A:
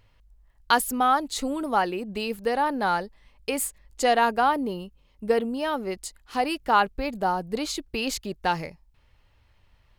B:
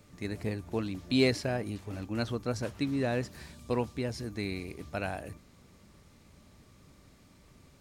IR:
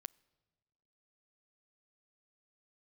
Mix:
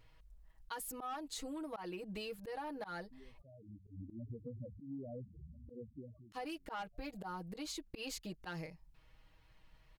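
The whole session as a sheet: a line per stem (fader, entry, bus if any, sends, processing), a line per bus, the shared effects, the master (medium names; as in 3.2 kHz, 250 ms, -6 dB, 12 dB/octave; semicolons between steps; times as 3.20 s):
-6.0 dB, 0.00 s, muted 3.42–6.32 s, no send, comb 6.3 ms, depth 92%
-1.0 dB, 2.00 s, no send, compression 16:1, threshold -34 dBFS, peak gain reduction 15 dB; sample-rate reducer 3 kHz, jitter 0%; loudest bins only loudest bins 4; auto duck -18 dB, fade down 0.50 s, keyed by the first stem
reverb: none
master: slow attack 143 ms; saturation -23 dBFS, distortion -14 dB; compression 6:1, threshold -42 dBFS, peak gain reduction 15 dB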